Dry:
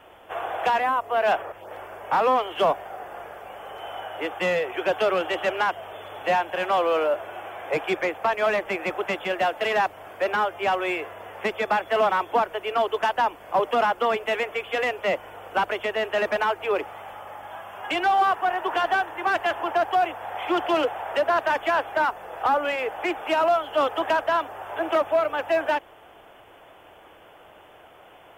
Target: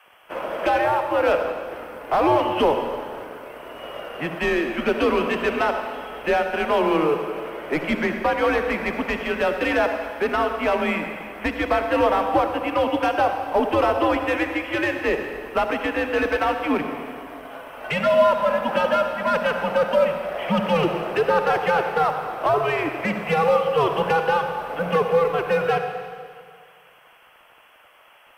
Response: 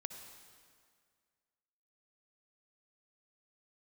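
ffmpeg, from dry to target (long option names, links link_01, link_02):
-filter_complex "[0:a]acrossover=split=980[link_01][link_02];[link_01]aeval=exprs='sgn(val(0))*max(abs(val(0))-0.00447,0)':channel_layout=same[link_03];[link_03][link_02]amix=inputs=2:normalize=0,afreqshift=-150,bandreject=frequency=7000:width=6.1[link_04];[1:a]atrim=start_sample=2205[link_05];[link_04][link_05]afir=irnorm=-1:irlink=0,volume=5.5dB" -ar 48000 -c:a libopus -b:a 256k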